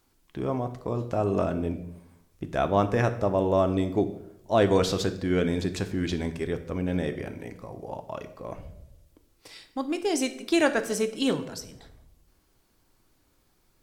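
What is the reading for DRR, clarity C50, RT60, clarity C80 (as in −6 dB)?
8.0 dB, 13.0 dB, 0.85 s, 15.5 dB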